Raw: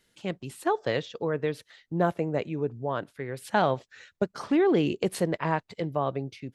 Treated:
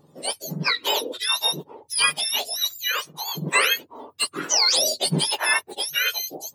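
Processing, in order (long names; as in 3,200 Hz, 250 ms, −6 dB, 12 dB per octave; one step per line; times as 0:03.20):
frequency axis turned over on the octave scale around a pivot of 1,300 Hz
parametric band 210 Hz −10.5 dB 0.28 octaves
in parallel at −11 dB: soft clipping −27 dBFS, distortion −13 dB
on the sum: level +8 dB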